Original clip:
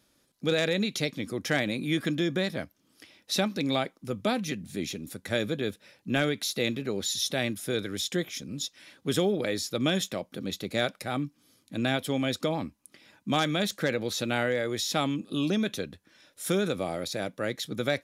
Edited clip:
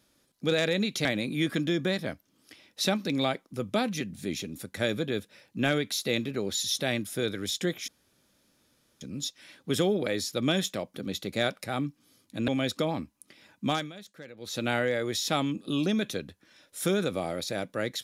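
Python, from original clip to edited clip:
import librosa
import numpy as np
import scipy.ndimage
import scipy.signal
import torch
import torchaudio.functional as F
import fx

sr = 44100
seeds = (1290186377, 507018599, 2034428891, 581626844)

y = fx.edit(x, sr, fx.cut(start_s=1.05, length_s=0.51),
    fx.insert_room_tone(at_s=8.39, length_s=1.13),
    fx.cut(start_s=11.86, length_s=0.26),
    fx.fade_down_up(start_s=13.3, length_s=0.98, db=-18.0, fade_s=0.26), tone=tone)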